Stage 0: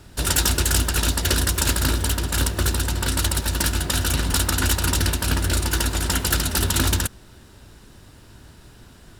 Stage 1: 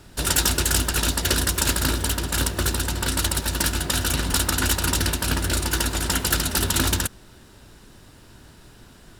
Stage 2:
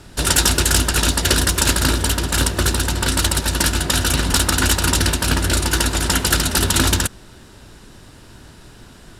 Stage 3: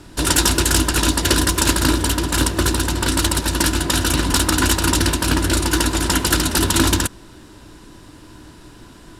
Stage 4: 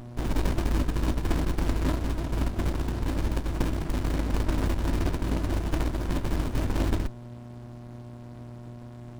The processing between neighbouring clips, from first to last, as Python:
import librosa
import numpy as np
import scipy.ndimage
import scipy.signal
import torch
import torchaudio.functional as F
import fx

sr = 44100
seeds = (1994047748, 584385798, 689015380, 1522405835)

y1 = fx.peak_eq(x, sr, hz=74.0, db=-4.5, octaves=1.3)
y2 = scipy.signal.sosfilt(scipy.signal.butter(2, 12000.0, 'lowpass', fs=sr, output='sos'), y1)
y2 = y2 * 10.0 ** (5.5 / 20.0)
y3 = fx.small_body(y2, sr, hz=(310.0, 1000.0), ring_ms=70, db=11)
y3 = y3 * 10.0 ** (-1.0 / 20.0)
y4 = fx.dmg_buzz(y3, sr, base_hz=120.0, harmonics=4, level_db=-33.0, tilt_db=-1, odd_only=False)
y4 = fx.running_max(y4, sr, window=65)
y4 = y4 * 10.0 ** (-8.0 / 20.0)